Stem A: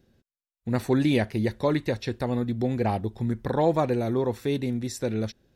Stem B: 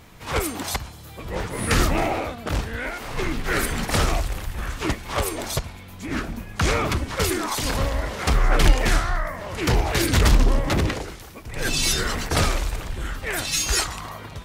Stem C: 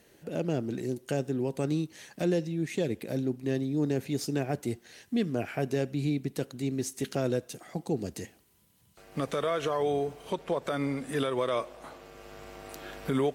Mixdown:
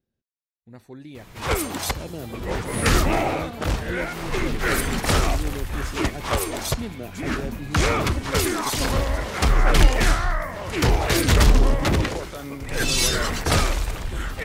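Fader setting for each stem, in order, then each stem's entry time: -18.5, +1.0, -5.0 dB; 0.00, 1.15, 1.65 s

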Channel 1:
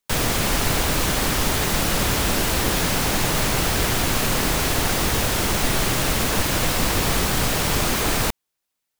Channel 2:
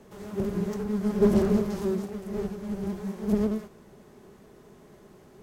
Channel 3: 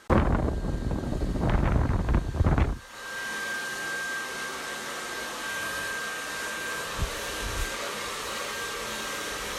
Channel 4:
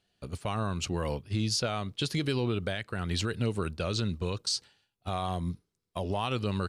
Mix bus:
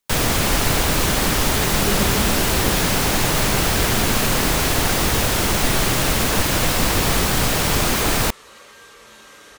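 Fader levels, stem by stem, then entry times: +2.5 dB, -5.5 dB, -11.5 dB, off; 0.00 s, 0.65 s, 0.20 s, off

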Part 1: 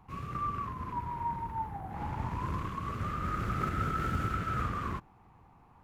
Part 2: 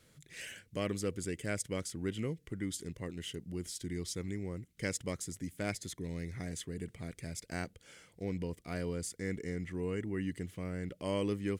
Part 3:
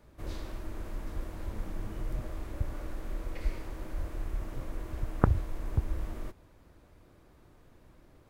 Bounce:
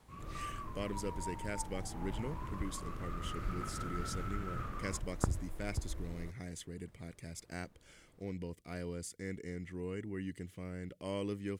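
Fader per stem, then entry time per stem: -10.0, -4.5, -9.0 dB; 0.00, 0.00, 0.00 s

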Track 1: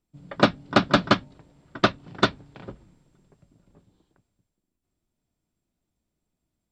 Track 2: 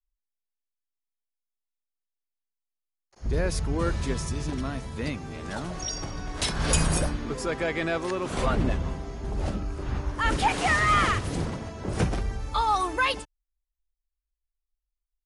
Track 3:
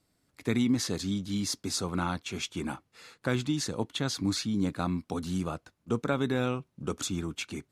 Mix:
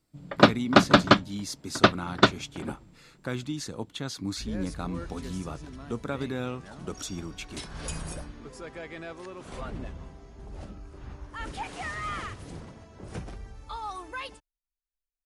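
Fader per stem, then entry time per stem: +1.5, -12.5, -4.0 dB; 0.00, 1.15, 0.00 s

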